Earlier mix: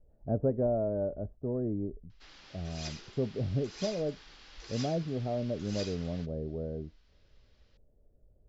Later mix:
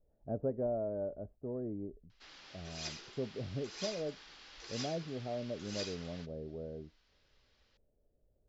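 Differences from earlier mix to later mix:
speech −4.5 dB
master: add low-shelf EQ 190 Hz −7.5 dB

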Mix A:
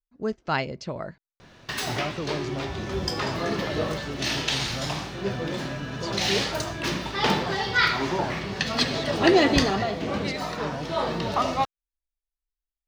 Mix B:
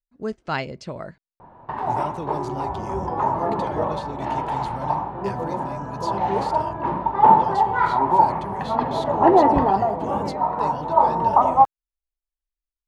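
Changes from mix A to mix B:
background: add low-pass with resonance 910 Hz, resonance Q 8
master: add high shelf with overshoot 7,800 Hz +8 dB, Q 1.5

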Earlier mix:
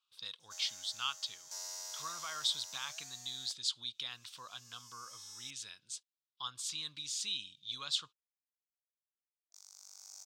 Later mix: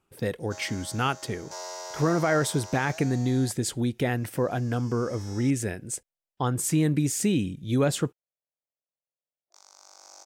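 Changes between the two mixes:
speech: remove drawn EQ curve 120 Hz 0 dB, 380 Hz −15 dB, 770 Hz −9 dB, 1,100 Hz +7 dB, 1,900 Hz −10 dB, 3,700 Hz +13 dB, 12,000 Hz −27 dB
master: remove first difference

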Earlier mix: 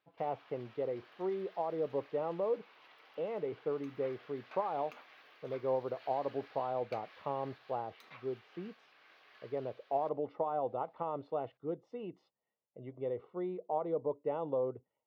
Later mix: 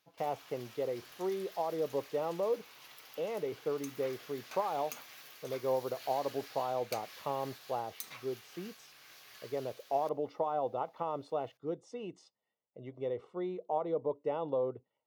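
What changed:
background: remove high-pass filter 300 Hz 12 dB per octave
master: remove high-frequency loss of the air 370 metres

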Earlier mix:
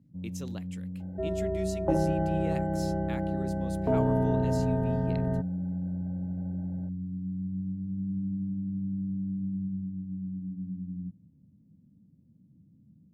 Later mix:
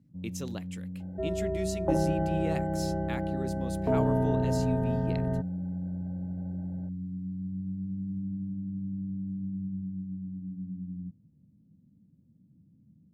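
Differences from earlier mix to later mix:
speech +3.5 dB
reverb: off

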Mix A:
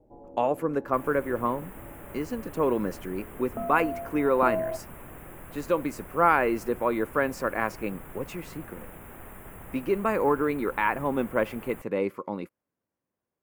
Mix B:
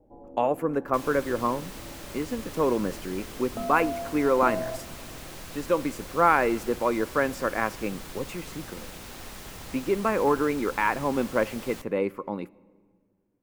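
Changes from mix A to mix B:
first sound −3.5 dB
second sound: remove Butterworth band-reject 4,900 Hz, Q 0.57
reverb: on, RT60 1.8 s

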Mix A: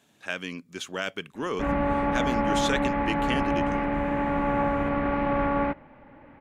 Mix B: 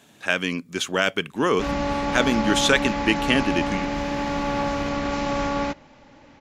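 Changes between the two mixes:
speech +9.5 dB
background: remove low-pass filter 2,200 Hz 24 dB per octave

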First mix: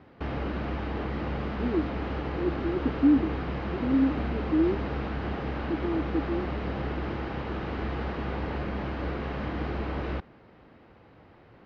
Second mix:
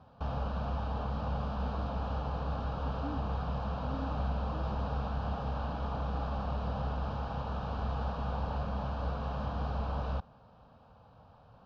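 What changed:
speech −9.0 dB
master: add phaser with its sweep stopped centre 840 Hz, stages 4

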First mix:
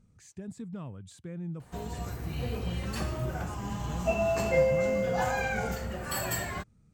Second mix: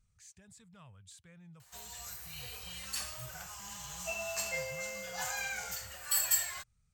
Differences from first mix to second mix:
background: add bass and treble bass −12 dB, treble +8 dB
master: add guitar amp tone stack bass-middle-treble 10-0-10

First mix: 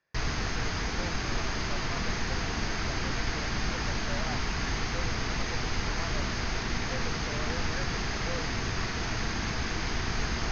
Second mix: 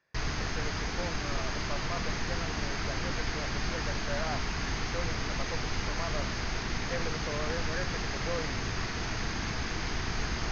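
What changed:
speech +4.0 dB
background: send −10.0 dB

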